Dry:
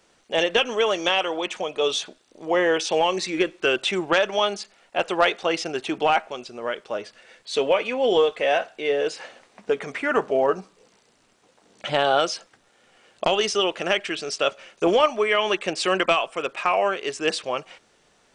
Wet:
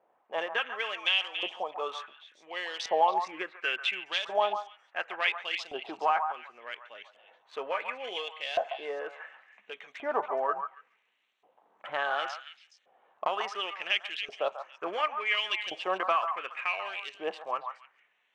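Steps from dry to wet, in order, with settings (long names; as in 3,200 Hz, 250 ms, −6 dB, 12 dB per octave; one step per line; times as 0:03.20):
adaptive Wiener filter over 9 samples
notch filter 1,400 Hz, Q 15
auto-filter band-pass saw up 0.7 Hz 680–4,200 Hz
on a send: echo through a band-pass that steps 140 ms, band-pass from 1,000 Hz, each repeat 1.4 octaves, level −5 dB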